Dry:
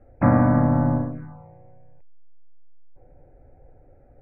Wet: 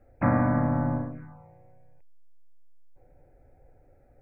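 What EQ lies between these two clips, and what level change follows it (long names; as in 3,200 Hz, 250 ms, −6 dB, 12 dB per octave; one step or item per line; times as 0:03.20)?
high-shelf EQ 2,100 Hz +12 dB
−6.5 dB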